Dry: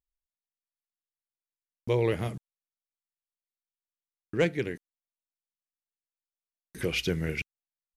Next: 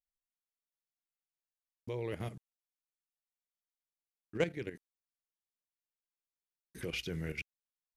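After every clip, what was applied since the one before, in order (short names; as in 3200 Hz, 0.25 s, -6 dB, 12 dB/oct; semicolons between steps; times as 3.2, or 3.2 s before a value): level quantiser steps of 11 dB; gain -4.5 dB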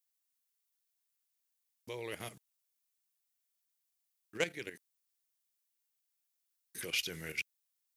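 tilt +3.5 dB/oct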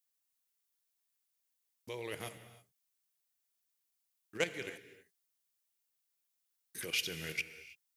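non-linear reverb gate 0.35 s flat, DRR 11 dB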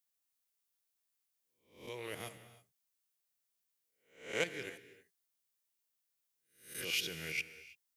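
spectral swells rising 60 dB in 0.46 s; gain -3 dB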